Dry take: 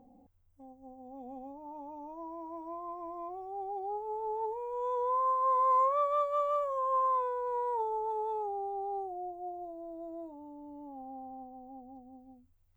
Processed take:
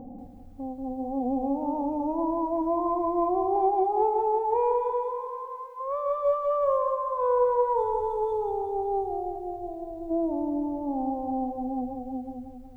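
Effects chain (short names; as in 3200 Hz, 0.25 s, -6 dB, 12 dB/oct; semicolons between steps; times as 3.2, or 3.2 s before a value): 3.56–5.79 bell 2100 Hz +15 dB 2.2 oct; 7.76–10.11 spectral gain 280–2900 Hz -10 dB; negative-ratio compressor -36 dBFS, ratio -1; tilt shelf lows +8.5 dB, about 1100 Hz; lo-fi delay 0.184 s, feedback 55%, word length 12-bit, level -6.5 dB; gain +4.5 dB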